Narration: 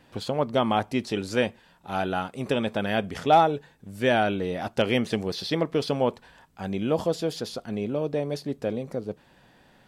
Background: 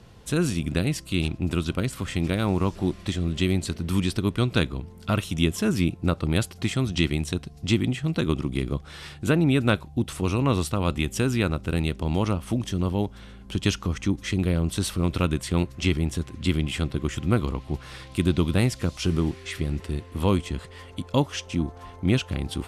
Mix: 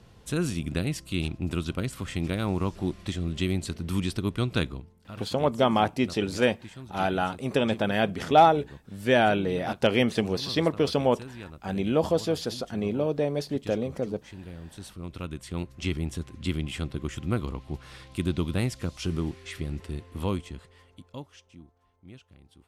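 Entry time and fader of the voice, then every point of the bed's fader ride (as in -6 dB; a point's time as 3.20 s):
5.05 s, +1.0 dB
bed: 4.72 s -4 dB
5.03 s -18.5 dB
14.60 s -18.5 dB
15.97 s -5.5 dB
20.20 s -5.5 dB
21.81 s -26.5 dB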